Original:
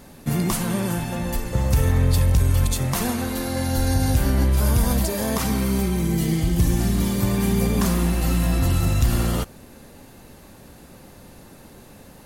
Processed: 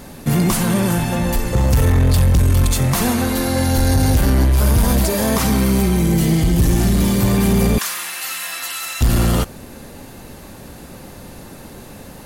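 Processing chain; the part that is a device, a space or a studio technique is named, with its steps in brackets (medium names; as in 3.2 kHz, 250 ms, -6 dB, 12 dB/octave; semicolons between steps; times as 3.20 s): 7.78–9.01 s: Chebyshev high-pass 1.7 kHz, order 2; saturation between pre-emphasis and de-emphasis (treble shelf 7.7 kHz +11.5 dB; saturation -17 dBFS, distortion -13 dB; treble shelf 7.7 kHz -11.5 dB); trim +8.5 dB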